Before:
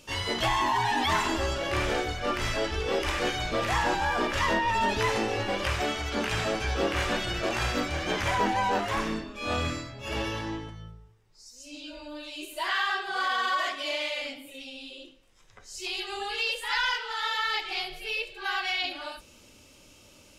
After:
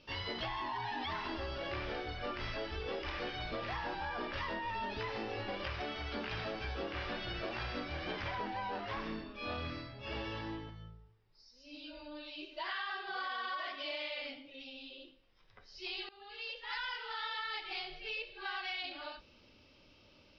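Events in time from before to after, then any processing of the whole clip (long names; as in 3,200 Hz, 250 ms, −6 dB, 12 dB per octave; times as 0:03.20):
0:16.09–0:17.03: fade in, from −21.5 dB
whole clip: Butterworth low-pass 5,300 Hz 72 dB per octave; downward compressor, threshold −29 dBFS; level −7 dB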